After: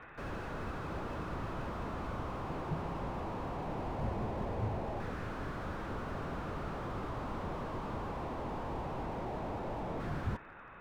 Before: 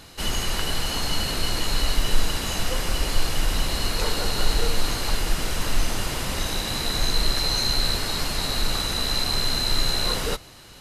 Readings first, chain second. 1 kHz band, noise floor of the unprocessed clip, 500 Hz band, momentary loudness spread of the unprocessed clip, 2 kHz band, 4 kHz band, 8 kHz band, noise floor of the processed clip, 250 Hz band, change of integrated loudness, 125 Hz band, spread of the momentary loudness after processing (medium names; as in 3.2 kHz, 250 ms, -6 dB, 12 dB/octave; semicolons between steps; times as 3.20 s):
-7.0 dB, -45 dBFS, -7.5 dB, 4 LU, -16.0 dB, -33.0 dB, -35.0 dB, -52 dBFS, -7.0 dB, -15.0 dB, -9.0 dB, 3 LU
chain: mistuned SSB -360 Hz 310–3300 Hz; LFO low-pass saw down 0.2 Hz 780–1600 Hz; slew-rate limiter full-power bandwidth 11 Hz; trim -3 dB